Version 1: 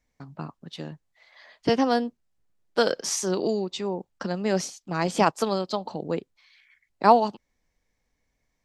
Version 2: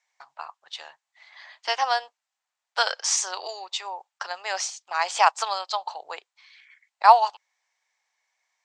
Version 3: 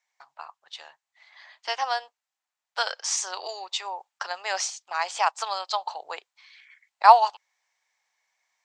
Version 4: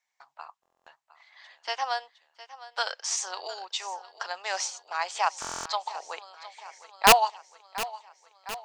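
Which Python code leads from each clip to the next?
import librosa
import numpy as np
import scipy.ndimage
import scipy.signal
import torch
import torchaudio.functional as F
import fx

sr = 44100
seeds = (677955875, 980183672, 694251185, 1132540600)

y1 = scipy.signal.sosfilt(scipy.signal.ellip(3, 1.0, 50, [800.0, 7800.0], 'bandpass', fs=sr, output='sos'), x)
y1 = F.gain(torch.from_numpy(y1), 5.5).numpy()
y2 = fx.rider(y1, sr, range_db=4, speed_s=0.5)
y2 = F.gain(torch.from_numpy(y2), -3.5).numpy()
y3 = (np.mod(10.0 ** (5.0 / 20.0) * y2 + 1.0, 2.0) - 1.0) / 10.0 ** (5.0 / 20.0)
y3 = fx.echo_feedback(y3, sr, ms=710, feedback_pct=60, wet_db=-16)
y3 = fx.buffer_glitch(y3, sr, at_s=(0.61, 5.4), block=1024, repeats=10)
y3 = F.gain(torch.from_numpy(y3), -2.5).numpy()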